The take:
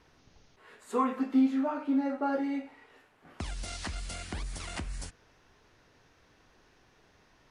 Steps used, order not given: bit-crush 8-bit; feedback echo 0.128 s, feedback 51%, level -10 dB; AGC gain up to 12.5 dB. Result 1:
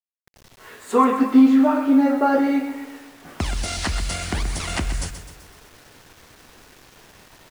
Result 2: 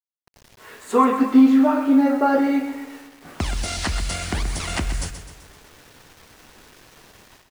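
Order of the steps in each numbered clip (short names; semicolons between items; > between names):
feedback echo > AGC > bit-crush; AGC > bit-crush > feedback echo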